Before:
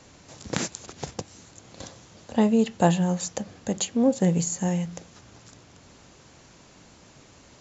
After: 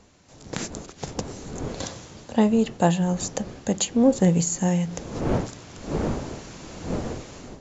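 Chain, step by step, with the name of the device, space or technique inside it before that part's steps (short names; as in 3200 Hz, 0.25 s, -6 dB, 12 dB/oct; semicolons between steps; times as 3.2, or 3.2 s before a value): smartphone video outdoors (wind noise 390 Hz -41 dBFS; AGC gain up to 16.5 dB; gain -6.5 dB; AAC 96 kbps 24000 Hz)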